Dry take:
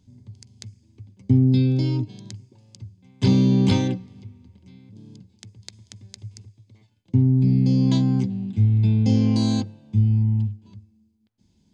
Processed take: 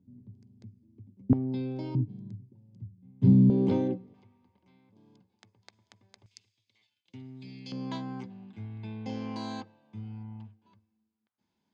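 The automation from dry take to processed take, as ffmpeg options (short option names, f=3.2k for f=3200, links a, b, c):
-af "asetnsamples=n=441:p=0,asendcmd='1.33 bandpass f 810;1.95 bandpass f 170;3.5 bandpass f 430;4.14 bandpass f 990;6.26 bandpass f 3100;7.72 bandpass f 1200',bandpass=f=240:t=q:w=1.4:csg=0"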